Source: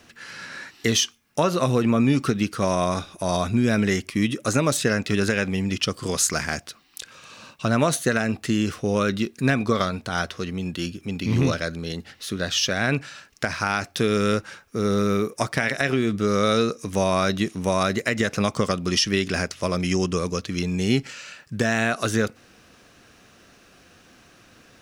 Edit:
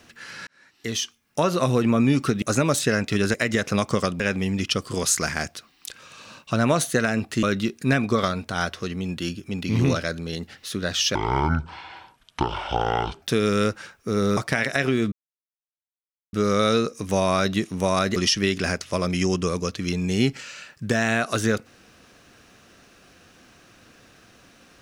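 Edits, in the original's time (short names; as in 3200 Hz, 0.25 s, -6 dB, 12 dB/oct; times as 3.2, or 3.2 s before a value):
0.47–1.5 fade in
2.42–4.4 cut
8.55–9 cut
12.72–13.9 speed 57%
15.05–15.42 cut
16.17 insert silence 1.21 s
18–18.86 move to 5.32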